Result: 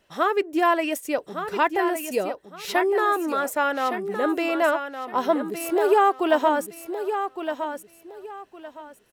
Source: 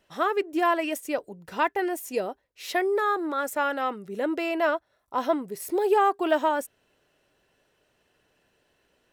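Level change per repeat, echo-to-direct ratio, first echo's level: −12.0 dB, −8.0 dB, −8.5 dB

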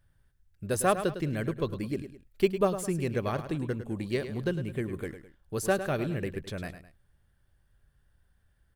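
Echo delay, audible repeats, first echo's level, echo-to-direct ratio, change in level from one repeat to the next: 105 ms, 2, −11.0 dB, −10.5 dB, −8.5 dB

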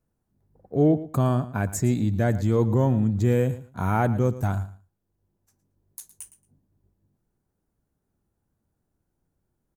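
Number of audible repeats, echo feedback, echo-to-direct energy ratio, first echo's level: 2, 18%, −15.5 dB, −15.5 dB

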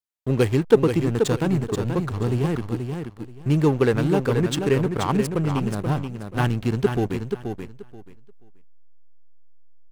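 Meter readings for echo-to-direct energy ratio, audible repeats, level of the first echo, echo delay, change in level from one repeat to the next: −6.5 dB, 3, −6.5 dB, 481 ms, −14.0 dB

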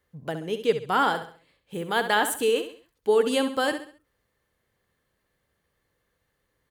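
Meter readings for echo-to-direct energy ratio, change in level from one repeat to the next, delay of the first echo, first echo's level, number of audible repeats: −9.5 dB, −8.5 dB, 67 ms, −10.0 dB, 3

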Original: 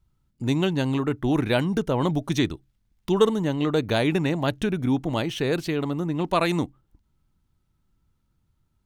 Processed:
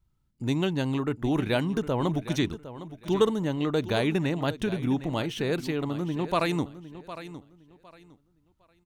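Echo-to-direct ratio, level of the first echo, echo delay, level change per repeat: −13.5 dB, −14.0 dB, 758 ms, −12.5 dB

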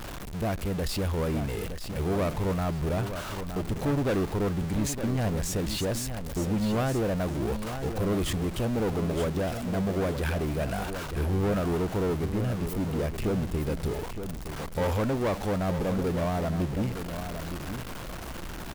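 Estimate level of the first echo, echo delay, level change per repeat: −9.0 dB, 916 ms, −14.5 dB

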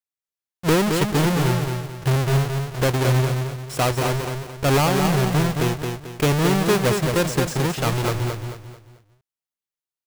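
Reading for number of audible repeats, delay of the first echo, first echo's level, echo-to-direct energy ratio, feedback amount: 4, 220 ms, −5.0 dB, −4.5 dB, 36%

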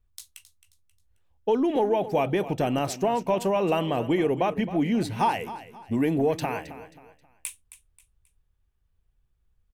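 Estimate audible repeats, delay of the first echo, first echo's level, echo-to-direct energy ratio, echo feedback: 3, 267 ms, −14.5 dB, −14.0 dB, 35%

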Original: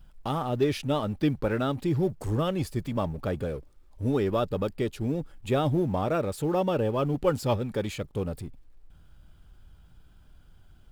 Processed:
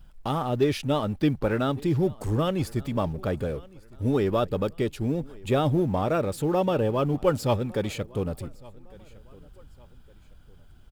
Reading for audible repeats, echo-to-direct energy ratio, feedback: 2, −23.0 dB, 37%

